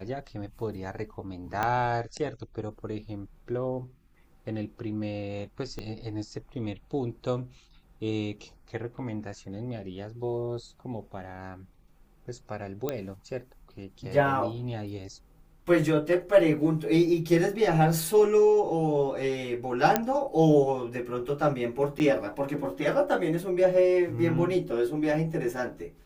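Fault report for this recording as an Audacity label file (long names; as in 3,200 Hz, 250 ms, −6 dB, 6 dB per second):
1.630000	1.630000	click −14 dBFS
5.790000	5.790000	click −23 dBFS
12.890000	12.890000	click −15 dBFS
19.960000	19.960000	click −7 dBFS
21.990000	22.000000	drop-out 9 ms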